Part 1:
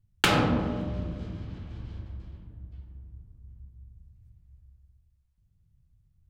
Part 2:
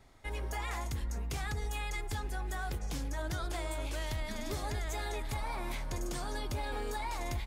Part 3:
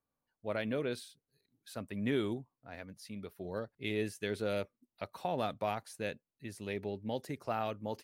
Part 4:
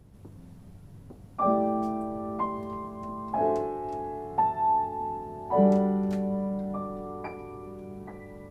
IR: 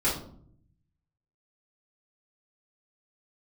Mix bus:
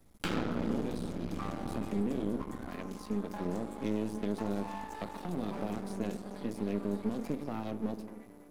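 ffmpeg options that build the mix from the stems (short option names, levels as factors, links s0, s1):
-filter_complex "[0:a]volume=0.944,asplit=3[s0][s1][s2];[s0]atrim=end=2.62,asetpts=PTS-STARTPTS,afade=t=out:st=2.616:d=0.004:c=hsin[s3];[s1]atrim=start=2.62:end=4.3,asetpts=PTS-STARTPTS,volume=0[s4];[s2]atrim=start=4.3,asetpts=PTS-STARTPTS,afade=t=in:d=0.004:c=hsin[s5];[s3][s4][s5]concat=n=3:v=0:a=1,asplit=2[s6][s7];[s7]volume=0.473[s8];[1:a]volume=0.316[s9];[2:a]equalizer=f=200:t=o:w=2.7:g=14,alimiter=limit=0.126:level=0:latency=1,volume=1.12,asplit=2[s10][s11];[s11]volume=0.106[s12];[3:a]bass=f=250:g=-2,treble=f=4000:g=11,volume=13.3,asoftclip=hard,volume=0.075,volume=0.355,asplit=2[s13][s14];[s14]volume=0.178[s15];[4:a]atrim=start_sample=2205[s16];[s8][s12][s15]amix=inputs=3:normalize=0[s17];[s17][s16]afir=irnorm=-1:irlink=0[s18];[s6][s9][s10][s13][s18]amix=inputs=5:normalize=0,acrossover=split=240|4100[s19][s20][s21];[s19]acompressor=threshold=0.0398:ratio=4[s22];[s20]acompressor=threshold=0.0158:ratio=4[s23];[s21]acompressor=threshold=0.00316:ratio=4[s24];[s22][s23][s24]amix=inputs=3:normalize=0,aeval=exprs='max(val(0),0)':c=same,lowshelf=f=160:t=q:w=1.5:g=-7.5"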